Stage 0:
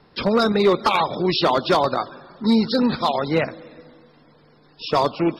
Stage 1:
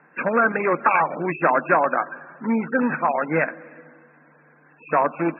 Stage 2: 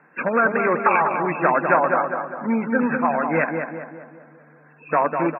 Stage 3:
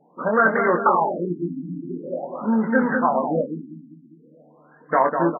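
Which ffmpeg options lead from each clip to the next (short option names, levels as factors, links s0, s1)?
-af "equalizer=f=200:t=o:w=0.33:g=-10,equalizer=f=400:t=o:w=0.33:g=-8,equalizer=f=1600:t=o:w=0.33:g=12,afftfilt=real='re*between(b*sr/4096,150,2700)':imag='im*between(b*sr/4096,150,2700)':win_size=4096:overlap=0.75"
-filter_complex "[0:a]asplit=2[s0][s1];[s1]adelay=200,lowpass=f=1700:p=1,volume=0.562,asplit=2[s2][s3];[s3]adelay=200,lowpass=f=1700:p=1,volume=0.51,asplit=2[s4][s5];[s5]adelay=200,lowpass=f=1700:p=1,volume=0.51,asplit=2[s6][s7];[s7]adelay=200,lowpass=f=1700:p=1,volume=0.51,asplit=2[s8][s9];[s9]adelay=200,lowpass=f=1700:p=1,volume=0.51,asplit=2[s10][s11];[s11]adelay=200,lowpass=f=1700:p=1,volume=0.51[s12];[s0][s2][s4][s6][s8][s10][s12]amix=inputs=7:normalize=0"
-filter_complex "[0:a]asplit=2[s0][s1];[s1]adelay=23,volume=0.562[s2];[s0][s2]amix=inputs=2:normalize=0,afftfilt=real='re*lt(b*sr/1024,310*pow(2200/310,0.5+0.5*sin(2*PI*0.45*pts/sr)))':imag='im*lt(b*sr/1024,310*pow(2200/310,0.5+0.5*sin(2*PI*0.45*pts/sr)))':win_size=1024:overlap=0.75"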